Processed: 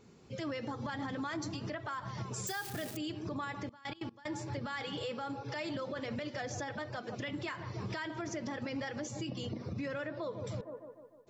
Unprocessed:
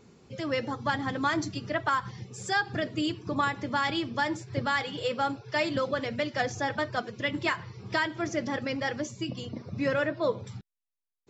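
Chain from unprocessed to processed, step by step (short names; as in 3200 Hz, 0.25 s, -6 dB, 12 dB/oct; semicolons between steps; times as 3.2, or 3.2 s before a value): 2.47–2.97 switching spikes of -26.5 dBFS; AGC gain up to 11 dB; band-limited delay 0.151 s, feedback 54%, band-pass 510 Hz, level -15 dB; compressor 4:1, threshold -30 dBFS, peak gain reduction 15.5 dB; 3.54–4.31 step gate "x..x.x..x" 187 bpm -24 dB; limiter -26.5 dBFS, peak gain reduction 10.5 dB; gain -4 dB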